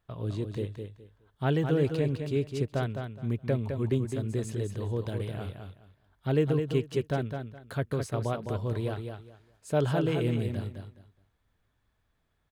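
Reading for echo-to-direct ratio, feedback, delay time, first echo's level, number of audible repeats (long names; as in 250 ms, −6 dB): −6.5 dB, 22%, 209 ms, −6.5 dB, 3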